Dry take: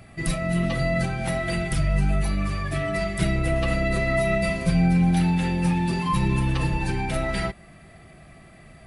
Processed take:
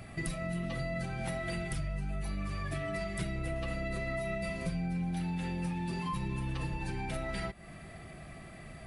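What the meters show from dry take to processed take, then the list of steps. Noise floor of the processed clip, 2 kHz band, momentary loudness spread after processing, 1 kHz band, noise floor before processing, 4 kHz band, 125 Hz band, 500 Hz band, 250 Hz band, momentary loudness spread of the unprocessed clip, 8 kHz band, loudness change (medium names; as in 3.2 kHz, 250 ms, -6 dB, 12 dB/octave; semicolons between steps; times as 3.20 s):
-49 dBFS, -11.5 dB, 13 LU, -12.0 dB, -49 dBFS, -11.5 dB, -12.5 dB, -12.0 dB, -13.0 dB, 7 LU, -11.0 dB, -12.5 dB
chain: compression 5:1, threshold -34 dBFS, peak gain reduction 16 dB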